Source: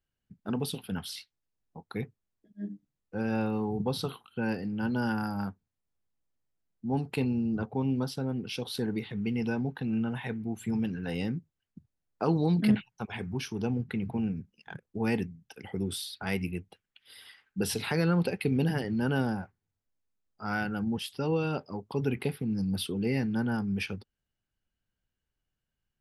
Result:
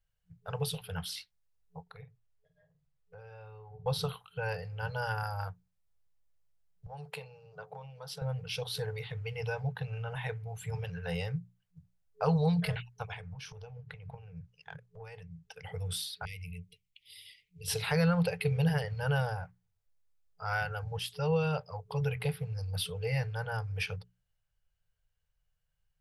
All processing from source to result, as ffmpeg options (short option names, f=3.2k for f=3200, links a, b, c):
-filter_complex "[0:a]asettb=1/sr,asplit=3[a][b][c];[a]atrim=end=1.824[d];[b]atrim=start=1.82:end=3.86,asetpts=PTS-STARTPTS,afade=t=in:d=0.004:c=qsin,afade=t=out:st=2.036:d=0.004:c=qsin,highshelf=f=7.4k:g=-11.5,acompressor=threshold=-47dB:ratio=4:attack=3.2:release=140:knee=1:detection=peak,asplit=2[e][f];[f]adelay=47,volume=-10.5dB[g];[e][g]amix=inputs=2:normalize=0,atrim=end_sample=89964[h];[c]atrim=start=3.856[i];[d][h]acrossfade=d=0.004:c1=hsin:c2=qsin[j];[j][i]acrossfade=d=0.004:c1=qsin:c2=hsin,asettb=1/sr,asplit=3[k][l][m];[k]atrim=end=6.864[n];[l]atrim=start=6.86:end=8.22,asetpts=PTS-STARTPTS,afade=t=in:d=0.004:c=qsin,afade=t=out:st=1.356:d=0.004:c=qsin,acompressor=threshold=-35dB:ratio=4:attack=3.2:release=140:knee=1:detection=peak,highpass=f=170:w=0.5412,highpass=f=170:w=1.3066[o];[m]atrim=start=8.216[p];[n][o]acrossfade=d=0.004:c1=hsin:c2=qsin[q];[q][p]acrossfade=d=0.004:c1=qsin:c2=hsin,asettb=1/sr,asplit=3[r][s][t];[r]atrim=end=13.134[u];[s]atrim=start=13.13:end=15.64,asetpts=PTS-STARTPTS,afade=t=in:d=0.004:c=qsin,afade=t=out:st=2.506:d=0.004:c=qsin,lowpass=8.5k,acompressor=threshold=-39dB:ratio=16:attack=3.2:release=140:knee=1:detection=peak[v];[t]atrim=start=15.636[w];[u][v]acrossfade=d=0.004:c1=hsin:c2=qsin[x];[x][w]acrossfade=d=0.004:c1=qsin:c2=hsin,asettb=1/sr,asplit=3[y][z][aa];[y]atrim=end=16.254[ab];[z]atrim=start=16.25:end=17.68,asetpts=PTS-STARTPTS,afade=t=in:d=0.004:c=qsin,afade=t=out:st=1.426:d=0.004:c=qsin,acompressor=threshold=-38dB:ratio=2.5:attack=3.2:release=140:knee=1:detection=peak,asuperstop=centerf=940:order=20:qfactor=0.58[ac];[aa]atrim=start=17.676[ad];[ab][ac]acrossfade=d=0.004:c1=hsin:c2=qsin[ae];[ae][ad]acrossfade=d=0.004:c1=qsin:c2=hsin,bandreject=f=60:t=h:w=6,bandreject=f=120:t=h:w=6,bandreject=f=180:t=h:w=6,afftfilt=real='re*(1-between(b*sr/4096,180,430))':imag='im*(1-between(b*sr/4096,180,430))':win_size=4096:overlap=0.75,lowshelf=f=68:g=10.5"